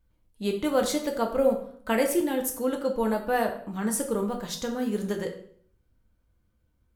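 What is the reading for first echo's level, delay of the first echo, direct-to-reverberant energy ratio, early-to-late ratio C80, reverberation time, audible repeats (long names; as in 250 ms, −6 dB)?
no echo audible, no echo audible, 2.5 dB, 12.0 dB, 0.55 s, no echo audible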